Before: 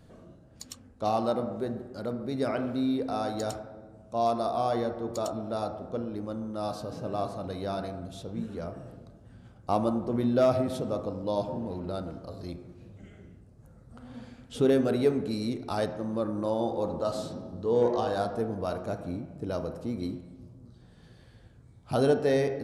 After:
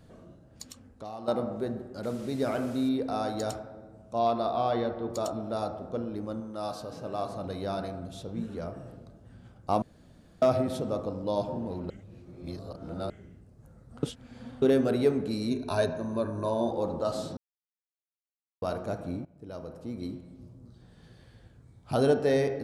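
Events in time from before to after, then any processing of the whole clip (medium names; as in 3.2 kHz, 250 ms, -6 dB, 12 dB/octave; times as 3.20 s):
0.63–1.28 s: compression 3:1, threshold -41 dBFS
2.03–2.89 s: one-bit delta coder 64 kbps, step -44 dBFS
4.19–5.10 s: resonant high shelf 5.1 kHz -10.5 dB, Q 1.5
6.40–7.29 s: bass shelf 370 Hz -6 dB
9.82–10.42 s: room tone
11.90–13.10 s: reverse
14.03–14.62 s: reverse
15.50–16.71 s: rippled EQ curve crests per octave 1.5, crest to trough 13 dB
17.37–18.62 s: mute
19.25–20.49 s: fade in, from -15.5 dB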